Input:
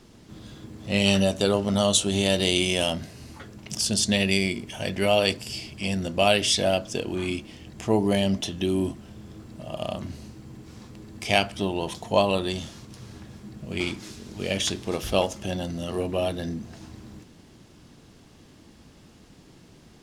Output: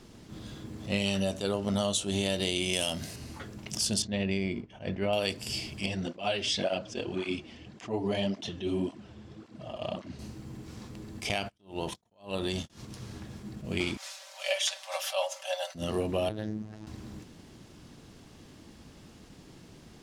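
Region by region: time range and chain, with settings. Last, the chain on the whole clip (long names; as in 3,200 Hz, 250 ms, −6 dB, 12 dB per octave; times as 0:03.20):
0:02.73–0:03.16: high-pass filter 41 Hz + high-shelf EQ 3,600 Hz +10.5 dB
0:04.02–0:05.13: downward expander −32 dBFS + head-to-tape spacing loss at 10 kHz 28 dB
0:05.86–0:10.19: low-pass filter 5,200 Hz + low-shelf EQ 120 Hz −7 dB + through-zero flanger with one copy inverted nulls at 1.8 Hz, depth 7 ms
0:11.29–0:12.70: noise gate −35 dBFS, range −35 dB + downward compressor 2.5 to 1, threshold −26 dBFS
0:13.97–0:15.75: Chebyshev high-pass filter 540 Hz, order 8 + comb filter 5.2 ms, depth 77%
0:16.29–0:16.87: high-shelf EQ 2,800 Hz −11 dB + phases set to zero 107 Hz + highs frequency-modulated by the lows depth 0.22 ms
whole clip: downward compressor, threshold −25 dBFS; level that may rise only so fast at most 190 dB per second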